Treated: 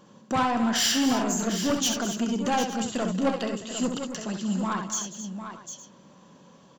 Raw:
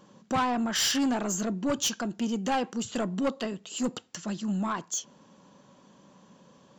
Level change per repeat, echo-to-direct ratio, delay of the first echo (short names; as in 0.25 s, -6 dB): no steady repeat, -3.5 dB, 66 ms